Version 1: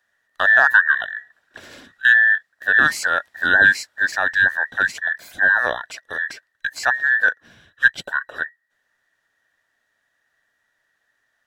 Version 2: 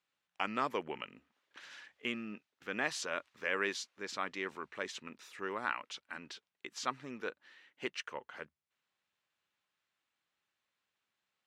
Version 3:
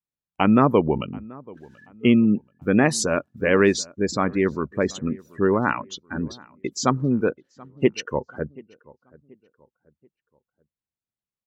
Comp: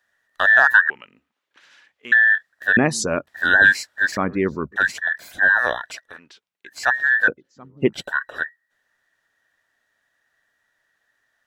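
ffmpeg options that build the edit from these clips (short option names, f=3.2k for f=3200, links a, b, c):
-filter_complex "[1:a]asplit=2[a][b];[2:a]asplit=3[c][d][e];[0:a]asplit=6[f][g][h][i][j][k];[f]atrim=end=0.902[l];[a]atrim=start=0.898:end=2.122[m];[g]atrim=start=2.118:end=2.772[n];[c]atrim=start=2.768:end=3.272[o];[h]atrim=start=3.268:end=4.172[p];[d]atrim=start=4.168:end=4.762[q];[i]atrim=start=4.758:end=6.2[r];[b]atrim=start=5.96:end=6.88[s];[j]atrim=start=6.64:end=7.282[t];[e]atrim=start=7.278:end=7.932[u];[k]atrim=start=7.928[v];[l][m]acrossfade=d=0.004:c1=hsin:c2=hsin[w];[w][n]acrossfade=d=0.004:c1=hsin:c2=hsin[x];[x][o]acrossfade=d=0.004:c1=hsin:c2=hsin[y];[y][p]acrossfade=d=0.004:c1=hsin:c2=hsin[z];[z][q]acrossfade=d=0.004:c1=hsin:c2=hsin[aa];[aa][r]acrossfade=d=0.004:c1=hsin:c2=hsin[ab];[ab][s]acrossfade=d=0.24:c1=tri:c2=tri[ac];[ac][t]acrossfade=d=0.24:c1=tri:c2=tri[ad];[ad][u]acrossfade=d=0.004:c1=hsin:c2=hsin[ae];[ae][v]acrossfade=d=0.004:c1=hsin:c2=hsin"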